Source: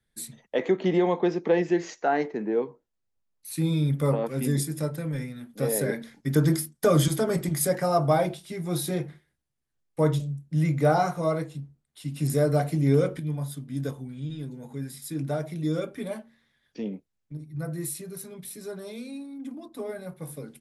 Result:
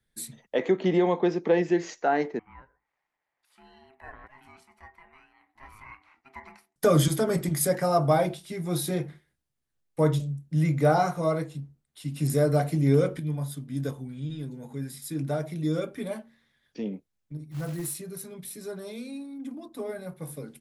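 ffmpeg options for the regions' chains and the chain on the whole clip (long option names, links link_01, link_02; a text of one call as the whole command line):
ffmpeg -i in.wav -filter_complex "[0:a]asettb=1/sr,asplit=3[link_01][link_02][link_03];[link_01]atrim=end=2.394[link_04];[link_02]atrim=start=2.39:end=6.76,asetpts=PTS-STARTPTS,afade=type=in:duration=0.004:curve=qsin,afade=type=out:start_time=4.366:duration=0.004:curve=qsin,acompressor=mode=upward:threshold=-33dB:ratio=2.5:attack=3.2:release=140:knee=2.83:detection=peak,bandpass=frequency=1400:width_type=q:width=4.3,aeval=exprs='val(0)*sin(2*PI*530*n/s)':channel_layout=same[link_05];[link_03]atrim=start=6.756[link_06];[link_04][link_05]acrossfade=duration=0.004:curve1=hsin:curve2=qsin[link_07];[link_07][link_06]acrossfade=duration=0.004:curve1=qsin:curve2=hsin,asettb=1/sr,asplit=3[link_08][link_09][link_10];[link_08]atrim=end=17.514[link_11];[link_09]atrim=start=17.51:end=17.97,asetpts=PTS-STARTPTS,afade=type=in:duration=0.004:curve=qsin,afade=type=out:start_time=0.456:duration=0.004:curve=qsin,acrusher=bits=4:mode=log:mix=0:aa=0.000001,volume=27dB,asoftclip=hard,volume=-27dB[link_12];[link_10]atrim=start=17.966[link_13];[link_11][link_12]acrossfade=duration=0.004:curve1=hsin:curve2=qsin[link_14];[link_14][link_13]acrossfade=duration=0.004:curve1=qsin:curve2=hsin" out.wav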